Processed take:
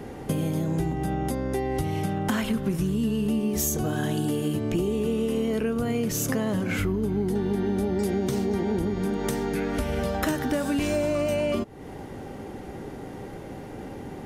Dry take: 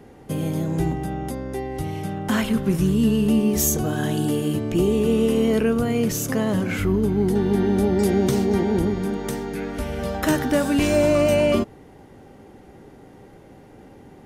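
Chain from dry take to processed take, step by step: compressor, threshold -32 dBFS, peak gain reduction 16 dB; gain +8 dB

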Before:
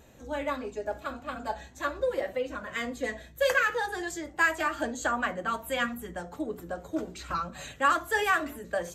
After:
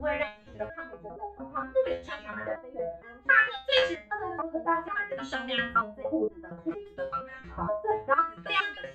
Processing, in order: slices in reverse order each 0.274 s, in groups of 2; low shelf 130 Hz +9 dB; LFO low-pass sine 0.61 Hz 690–3300 Hz; dynamic EQ 3900 Hz, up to +6 dB, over -41 dBFS, Q 1.4; stepped resonator 4.3 Hz 86–410 Hz; gain +8.5 dB

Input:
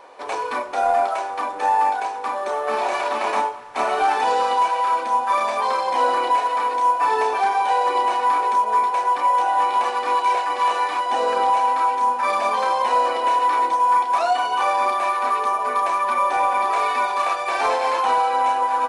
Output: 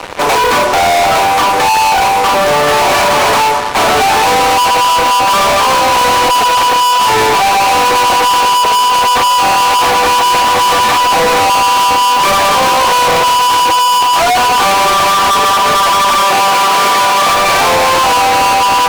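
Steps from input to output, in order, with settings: fuzz box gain 39 dB, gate -43 dBFS; 16.22–17.3 HPF 140 Hz 12 dB/oct; gain +4.5 dB

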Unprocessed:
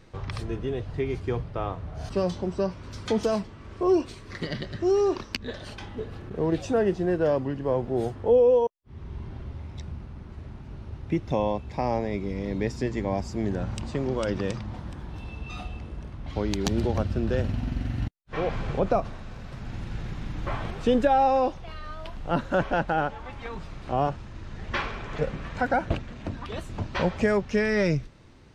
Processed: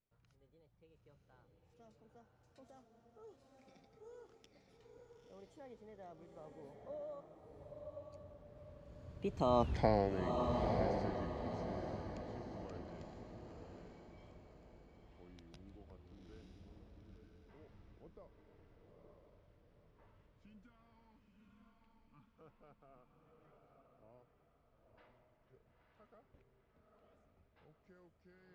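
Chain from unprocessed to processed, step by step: Doppler pass-by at 9.71, 58 m/s, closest 6.2 m; spectral gain 20.07–22.36, 340–840 Hz -20 dB; diffused feedback echo 0.93 s, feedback 41%, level -3 dB; gain +1 dB

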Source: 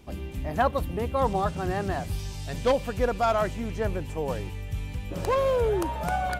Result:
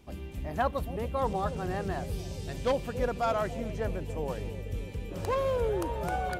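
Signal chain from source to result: analogue delay 0.284 s, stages 1024, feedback 83%, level -10 dB; gain -5 dB

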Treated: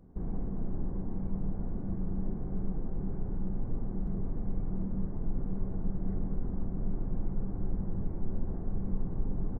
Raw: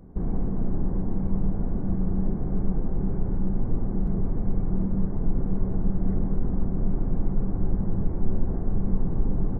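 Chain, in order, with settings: doubler 46 ms -13.5 dB; gain -8.5 dB

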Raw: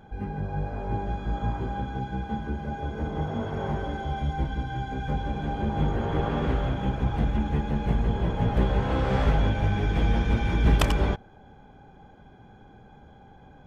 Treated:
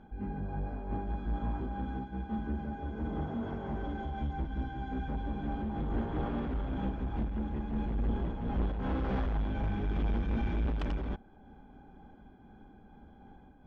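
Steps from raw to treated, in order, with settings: graphic EQ 125/250/500/1000/2000/4000 Hz -11/+5/-7/-3/-5/-4 dB; soft clip -26.5 dBFS, distortion -9 dB; air absorption 210 m; noise-modulated level, depth 60%; gain +2 dB

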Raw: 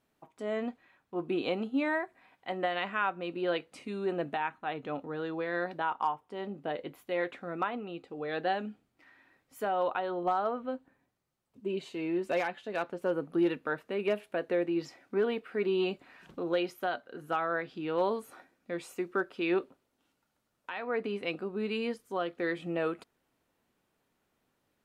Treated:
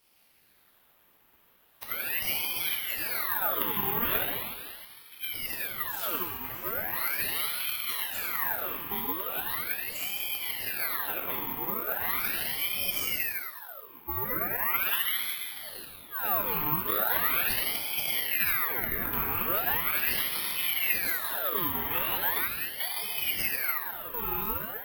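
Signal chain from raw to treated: whole clip reversed; bell 2300 Hz +8.5 dB 0.98 oct; negative-ratio compressor -37 dBFS, ratio -1; plate-style reverb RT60 2.4 s, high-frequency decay 0.7×, DRR -3.5 dB; careless resampling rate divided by 3×, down filtered, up zero stuff; ring modulator with a swept carrier 1700 Hz, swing 65%, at 0.39 Hz

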